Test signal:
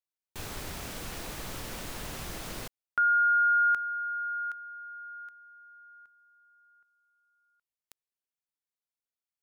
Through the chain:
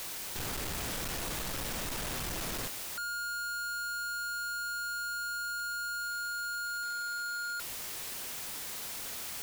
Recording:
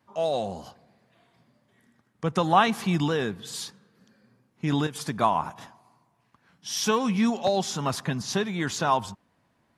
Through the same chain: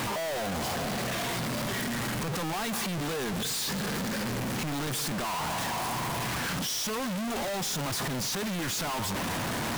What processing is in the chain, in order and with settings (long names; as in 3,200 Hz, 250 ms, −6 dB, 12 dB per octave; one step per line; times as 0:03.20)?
sign of each sample alone
level −3 dB